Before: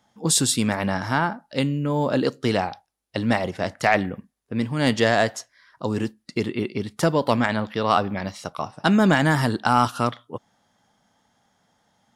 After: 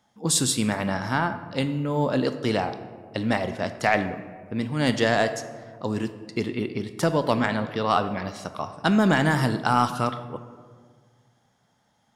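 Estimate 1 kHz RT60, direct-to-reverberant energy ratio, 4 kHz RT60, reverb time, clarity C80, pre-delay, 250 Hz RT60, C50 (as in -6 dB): 1.6 s, 10.0 dB, 0.85 s, 1.8 s, 13.0 dB, 20 ms, 2.0 s, 11.5 dB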